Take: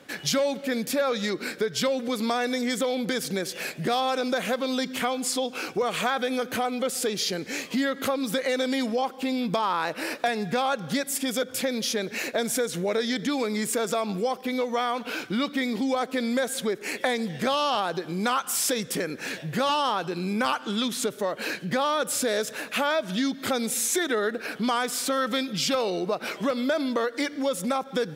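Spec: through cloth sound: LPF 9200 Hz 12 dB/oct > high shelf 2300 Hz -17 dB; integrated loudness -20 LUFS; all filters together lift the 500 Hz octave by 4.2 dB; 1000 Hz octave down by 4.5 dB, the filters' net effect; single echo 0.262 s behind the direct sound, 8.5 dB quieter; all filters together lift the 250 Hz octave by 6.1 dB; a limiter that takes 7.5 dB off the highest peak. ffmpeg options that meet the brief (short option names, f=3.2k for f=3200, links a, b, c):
-af "equalizer=f=250:t=o:g=6,equalizer=f=500:t=o:g=5.5,equalizer=f=1k:t=o:g=-5.5,alimiter=limit=-17dB:level=0:latency=1,lowpass=9.2k,highshelf=f=2.3k:g=-17,aecho=1:1:262:0.376,volume=6.5dB"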